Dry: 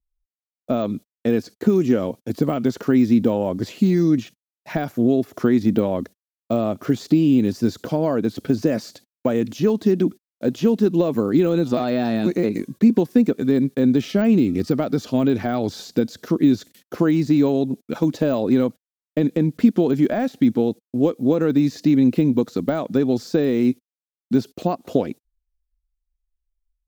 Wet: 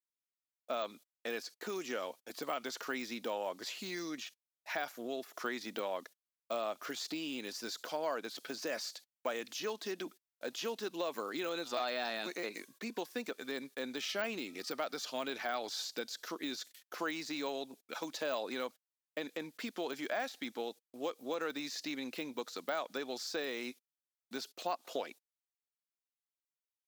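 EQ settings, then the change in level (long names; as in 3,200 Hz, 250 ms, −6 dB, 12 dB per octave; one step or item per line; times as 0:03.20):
high-pass filter 940 Hz 12 dB per octave
dynamic equaliser 4,700 Hz, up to +3 dB, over −48 dBFS, Q 0.82
−5.5 dB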